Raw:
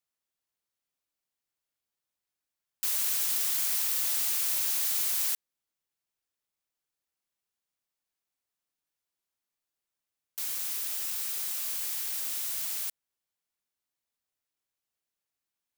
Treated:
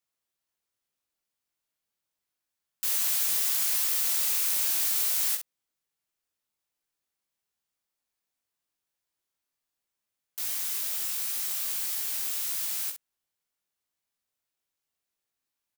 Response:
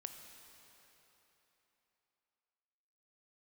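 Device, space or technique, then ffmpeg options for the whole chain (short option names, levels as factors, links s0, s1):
slapback doubling: -filter_complex "[0:a]asplit=3[s0][s1][s2];[s1]adelay=19,volume=0.668[s3];[s2]adelay=65,volume=0.422[s4];[s0][s3][s4]amix=inputs=3:normalize=0"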